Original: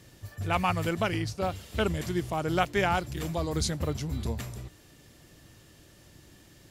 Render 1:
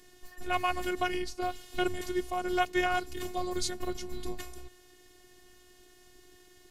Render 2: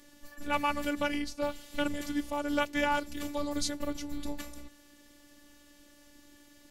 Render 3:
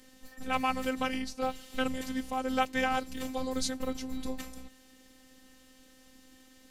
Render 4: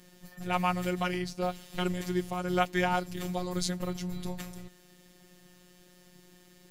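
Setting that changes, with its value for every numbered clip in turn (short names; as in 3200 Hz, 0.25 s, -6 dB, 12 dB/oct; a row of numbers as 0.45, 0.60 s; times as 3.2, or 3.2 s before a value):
robotiser, frequency: 360, 290, 260, 180 Hz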